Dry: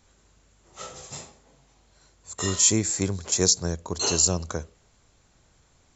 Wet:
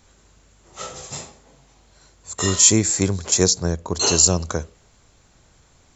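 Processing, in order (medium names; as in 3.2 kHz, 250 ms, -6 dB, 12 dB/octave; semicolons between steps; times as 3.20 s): 3.43–3.95 s: treble shelf 3.5 kHz -6.5 dB; trim +6 dB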